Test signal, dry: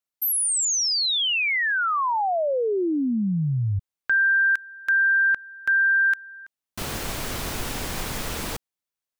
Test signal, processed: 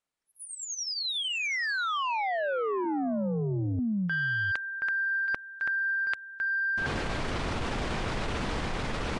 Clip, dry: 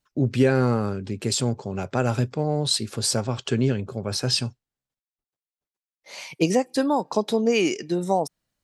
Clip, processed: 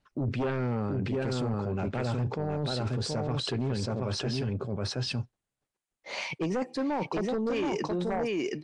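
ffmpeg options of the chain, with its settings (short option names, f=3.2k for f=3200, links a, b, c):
-filter_complex "[0:a]acrossover=split=7600[a][b];[b]acompressor=threshold=-33dB:ratio=4:attack=1:release=60[c];[a][c]amix=inputs=2:normalize=0,aemphasis=mode=reproduction:type=cd,aecho=1:1:725:0.596,aeval=exprs='0.562*sin(PI/2*2.82*val(0)/0.562)':c=same,areverse,acompressor=threshold=-20dB:ratio=16:attack=2.8:release=87:knee=1:detection=peak,areverse,highshelf=f=7.5k:g=-10.5,volume=-6.5dB" -ar 22050 -c:a nellymoser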